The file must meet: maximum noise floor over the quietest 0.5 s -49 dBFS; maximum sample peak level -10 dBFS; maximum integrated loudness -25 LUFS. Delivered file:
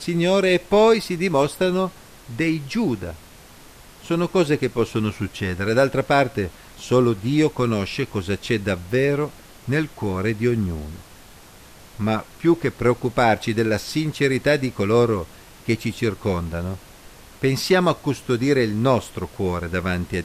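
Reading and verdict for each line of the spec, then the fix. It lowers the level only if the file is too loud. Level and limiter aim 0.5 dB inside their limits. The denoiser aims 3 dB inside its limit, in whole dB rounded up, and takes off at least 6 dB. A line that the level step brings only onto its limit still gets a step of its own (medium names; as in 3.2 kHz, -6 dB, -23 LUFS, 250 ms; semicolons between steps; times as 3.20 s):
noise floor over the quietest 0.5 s -45 dBFS: fail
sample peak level -5.5 dBFS: fail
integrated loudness -21.5 LUFS: fail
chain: noise reduction 6 dB, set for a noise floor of -45 dBFS; trim -4 dB; peak limiter -10.5 dBFS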